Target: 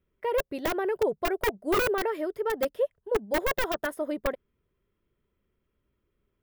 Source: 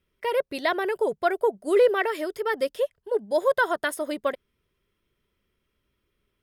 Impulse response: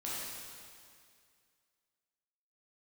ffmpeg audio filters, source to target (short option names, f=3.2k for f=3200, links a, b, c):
-af "aeval=exprs='(mod(6.31*val(0)+1,2)-1)/6.31':c=same,equalizer=f=6.7k:w=0.32:g=-15"